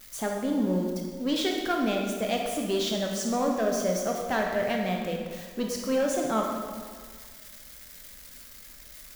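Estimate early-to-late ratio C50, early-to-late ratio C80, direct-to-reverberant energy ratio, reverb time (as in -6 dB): 2.0 dB, 4.0 dB, 0.5 dB, 1.7 s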